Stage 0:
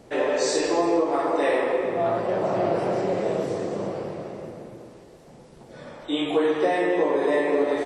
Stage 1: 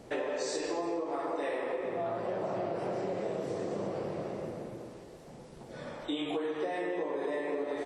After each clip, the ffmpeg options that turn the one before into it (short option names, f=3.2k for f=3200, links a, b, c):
-af "acompressor=threshold=-30dB:ratio=6,volume=-1.5dB"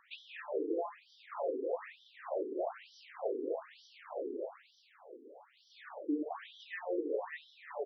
-af "afftfilt=real='re*between(b*sr/1024,330*pow(4300/330,0.5+0.5*sin(2*PI*1.1*pts/sr))/1.41,330*pow(4300/330,0.5+0.5*sin(2*PI*1.1*pts/sr))*1.41)':imag='im*between(b*sr/1024,330*pow(4300/330,0.5+0.5*sin(2*PI*1.1*pts/sr))/1.41,330*pow(4300/330,0.5+0.5*sin(2*PI*1.1*pts/sr))*1.41)':win_size=1024:overlap=0.75,volume=1.5dB"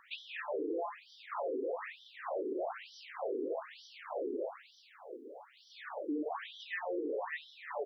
-af "alimiter=level_in=10.5dB:limit=-24dB:level=0:latency=1:release=42,volume=-10.5dB,volume=5dB"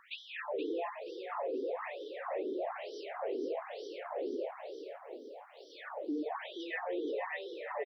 -filter_complex "[0:a]asplit=5[a][b][c][d][e];[b]adelay=475,afreqshift=41,volume=-8dB[f];[c]adelay=950,afreqshift=82,volume=-17.4dB[g];[d]adelay=1425,afreqshift=123,volume=-26.7dB[h];[e]adelay=1900,afreqshift=164,volume=-36.1dB[i];[a][f][g][h][i]amix=inputs=5:normalize=0"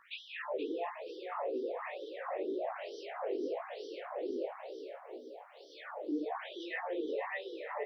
-af "flanger=delay=15.5:depth=6.8:speed=1.9,volume=2.5dB"